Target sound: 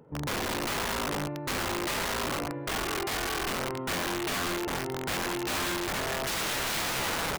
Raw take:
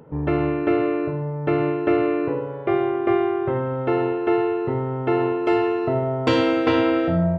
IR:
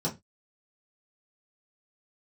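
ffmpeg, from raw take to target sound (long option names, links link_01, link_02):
-filter_complex "[0:a]asettb=1/sr,asplit=3[link_01][link_02][link_03];[link_01]atrim=end=2.844[link_04];[link_02]atrim=start=2.84:end=3.41,asetpts=PTS-STARTPTS,afade=type=in:duration=0.004:curve=qsin,afade=type=out:start_time=0.566:duration=0.004:curve=qsin,tiltshelf=frequency=640:gain=-5.5[link_05];[link_03]atrim=start=3.406[link_06];[link_04][link_05]acrossfade=duration=0.004:curve1=hsin:curve2=qsin[link_07];[link_07][link_06]acrossfade=duration=0.004:curve1=qsin:curve2=hsin,aecho=1:1:49|88|194|195|456|848:0.224|0.133|0.531|0.141|0.211|0.168,aeval=exprs='(mod(7.5*val(0)+1,2)-1)/7.5':channel_layout=same,volume=-8.5dB"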